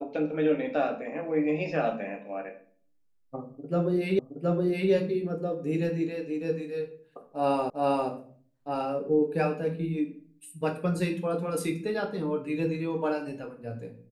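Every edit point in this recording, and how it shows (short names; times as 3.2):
4.19 repeat of the last 0.72 s
7.7 repeat of the last 0.4 s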